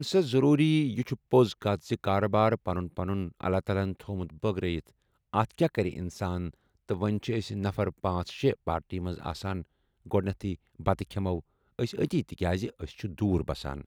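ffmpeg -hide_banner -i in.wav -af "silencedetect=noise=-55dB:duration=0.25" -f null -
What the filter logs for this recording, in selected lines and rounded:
silence_start: 5.02
silence_end: 5.34 | silence_duration: 0.32
silence_start: 6.54
silence_end: 6.89 | silence_duration: 0.35
silence_start: 9.65
silence_end: 10.05 | silence_duration: 0.40
silence_start: 11.41
silence_end: 11.79 | silence_duration: 0.38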